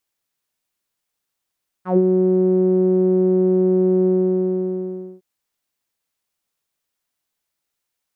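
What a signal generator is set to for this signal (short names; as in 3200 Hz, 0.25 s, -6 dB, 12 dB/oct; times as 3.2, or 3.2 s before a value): synth note saw F#3 12 dB/oct, low-pass 390 Hz, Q 4.5, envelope 2 oct, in 0.11 s, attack 0.114 s, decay 0.05 s, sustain -4 dB, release 1.15 s, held 2.21 s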